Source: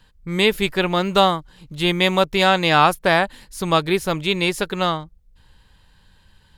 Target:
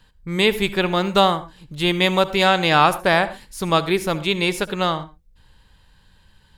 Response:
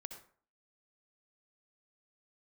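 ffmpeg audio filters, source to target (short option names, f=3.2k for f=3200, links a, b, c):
-filter_complex "[0:a]asplit=2[a][b];[1:a]atrim=start_sample=2205,atrim=end_sample=6174[c];[b][c]afir=irnorm=-1:irlink=0,volume=-0.5dB[d];[a][d]amix=inputs=2:normalize=0,volume=-4dB"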